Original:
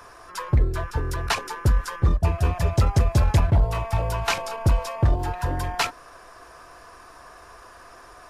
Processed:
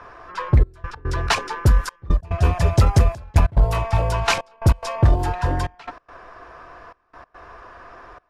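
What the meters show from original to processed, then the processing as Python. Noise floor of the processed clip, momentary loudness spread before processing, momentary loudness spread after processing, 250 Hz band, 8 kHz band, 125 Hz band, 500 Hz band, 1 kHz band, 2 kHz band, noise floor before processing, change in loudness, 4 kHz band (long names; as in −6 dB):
−64 dBFS, 7 LU, 11 LU, +3.0 dB, +1.5 dB, +3.0 dB, +3.0 dB, +3.0 dB, +3.0 dB, −47 dBFS, +3.0 dB, +2.5 dB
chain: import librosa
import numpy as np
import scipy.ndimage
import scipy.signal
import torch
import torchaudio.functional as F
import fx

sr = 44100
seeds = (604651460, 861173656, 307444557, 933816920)

y = fx.step_gate(x, sr, bpm=143, pattern='xxxxxx..x.xx', floor_db=-24.0, edge_ms=4.5)
y = fx.env_lowpass(y, sr, base_hz=2400.0, full_db=-17.0)
y = y * 10.0 ** (4.5 / 20.0)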